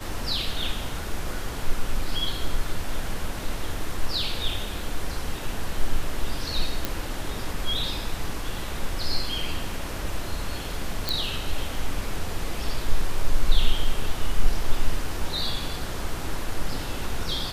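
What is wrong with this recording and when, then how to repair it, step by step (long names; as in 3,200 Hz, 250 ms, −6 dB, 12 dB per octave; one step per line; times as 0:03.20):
0:06.85: click
0:11.09: click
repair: click removal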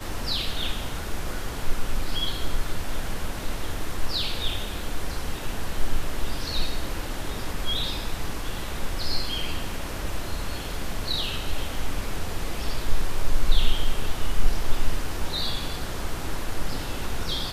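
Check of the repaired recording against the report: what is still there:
none of them is left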